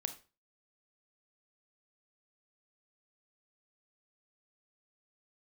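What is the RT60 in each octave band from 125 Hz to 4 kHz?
0.40 s, 0.35 s, 0.35 s, 0.30 s, 0.30 s, 0.30 s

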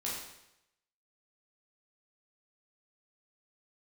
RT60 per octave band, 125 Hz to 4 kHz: 0.85 s, 0.80 s, 0.85 s, 0.85 s, 0.85 s, 0.80 s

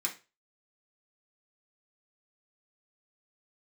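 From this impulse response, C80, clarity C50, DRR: 19.0 dB, 12.0 dB, -2.5 dB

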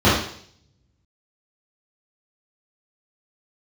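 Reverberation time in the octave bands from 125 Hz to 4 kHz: 1.2 s, 0.60 s, 0.60 s, 0.55 s, 0.60 s, 0.70 s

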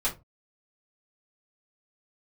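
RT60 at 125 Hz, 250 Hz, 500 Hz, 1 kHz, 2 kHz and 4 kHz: 0.35 s, 0.30 s, 0.25 s, 0.20 s, 0.20 s, 0.15 s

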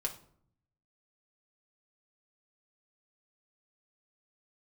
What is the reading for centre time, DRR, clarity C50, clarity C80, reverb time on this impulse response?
10 ms, 0.5 dB, 12.5 dB, 17.0 dB, 0.60 s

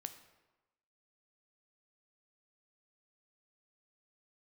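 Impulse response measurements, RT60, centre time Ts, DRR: 1.1 s, 10 ms, 8.5 dB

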